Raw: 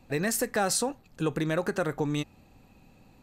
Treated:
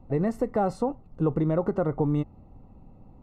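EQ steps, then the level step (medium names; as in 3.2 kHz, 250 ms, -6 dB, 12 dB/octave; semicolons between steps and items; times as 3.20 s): Savitzky-Golay filter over 65 samples; bass shelf 120 Hz +9 dB; +2.5 dB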